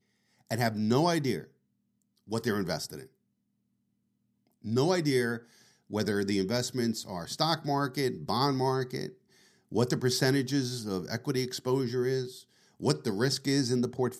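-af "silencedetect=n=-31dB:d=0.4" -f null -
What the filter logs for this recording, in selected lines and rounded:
silence_start: 0.00
silence_end: 0.51 | silence_duration: 0.51
silence_start: 1.40
silence_end: 2.32 | silence_duration: 0.92
silence_start: 2.95
silence_end: 4.67 | silence_duration: 1.71
silence_start: 5.37
silence_end: 5.93 | silence_duration: 0.56
silence_start: 9.06
silence_end: 9.72 | silence_duration: 0.67
silence_start: 12.25
silence_end: 12.83 | silence_duration: 0.58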